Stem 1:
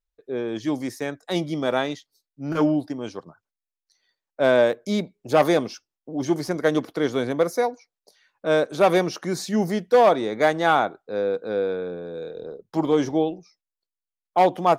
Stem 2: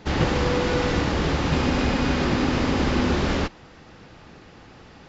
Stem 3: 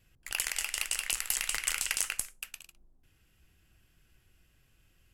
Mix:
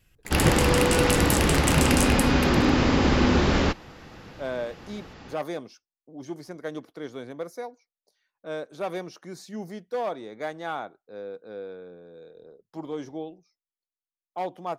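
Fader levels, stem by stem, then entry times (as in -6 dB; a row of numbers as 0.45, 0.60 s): -13.5, +1.5, +3.0 dB; 0.00, 0.25, 0.00 s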